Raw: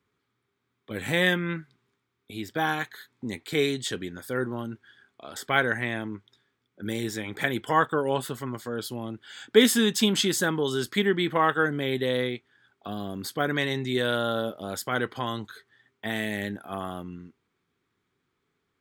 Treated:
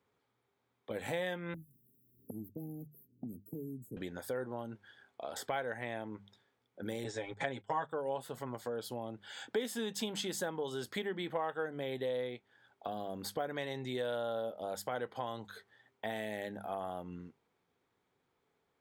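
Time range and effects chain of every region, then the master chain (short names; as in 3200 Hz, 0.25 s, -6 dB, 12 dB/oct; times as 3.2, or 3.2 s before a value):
1.54–3.97 inverse Chebyshev band-stop 1200–4000 Hz, stop band 80 dB + low shelf 220 Hz -5.5 dB + three-band squash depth 100%
7.04–7.87 gate -36 dBFS, range -21 dB + steep low-pass 8500 Hz 72 dB/oct + comb 7.3 ms, depth 82%
whole clip: band shelf 660 Hz +9.5 dB 1.2 oct; notches 50/100/150/200 Hz; compressor 3:1, threshold -34 dBFS; gain -4 dB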